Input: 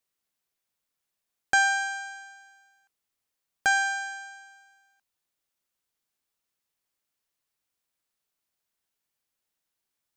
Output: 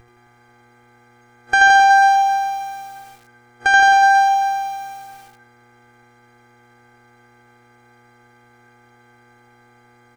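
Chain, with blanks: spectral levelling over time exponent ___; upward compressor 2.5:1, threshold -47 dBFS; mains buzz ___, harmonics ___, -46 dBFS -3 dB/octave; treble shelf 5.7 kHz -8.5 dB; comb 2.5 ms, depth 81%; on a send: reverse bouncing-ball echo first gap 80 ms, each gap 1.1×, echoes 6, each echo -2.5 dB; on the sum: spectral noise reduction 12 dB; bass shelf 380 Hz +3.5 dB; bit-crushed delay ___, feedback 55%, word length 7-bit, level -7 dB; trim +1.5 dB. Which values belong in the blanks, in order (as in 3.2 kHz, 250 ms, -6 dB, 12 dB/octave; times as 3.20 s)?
0.6, 120 Hz, 19, 140 ms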